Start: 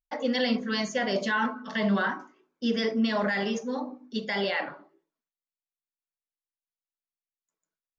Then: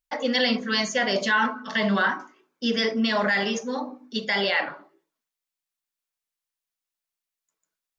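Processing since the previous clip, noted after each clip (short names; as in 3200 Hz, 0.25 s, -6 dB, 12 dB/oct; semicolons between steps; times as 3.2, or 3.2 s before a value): tilt shelf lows -3.5 dB, about 800 Hz; gain +4 dB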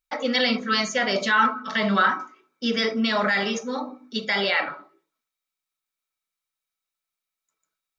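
small resonant body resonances 1300/2300/3800 Hz, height 13 dB, ringing for 45 ms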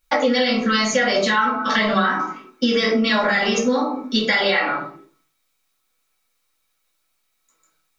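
in parallel at +2 dB: limiter -19.5 dBFS, peak gain reduction 12 dB; on the sum: shoebox room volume 160 m³, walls furnished, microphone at 2.3 m; compressor 6:1, threshold -20 dBFS, peak gain reduction 13 dB; gain +4 dB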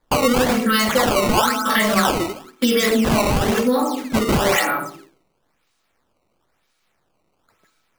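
in parallel at -10.5 dB: soft clip -20.5 dBFS, distortion -10 dB; on the sum: decimation with a swept rate 15×, swing 160% 1 Hz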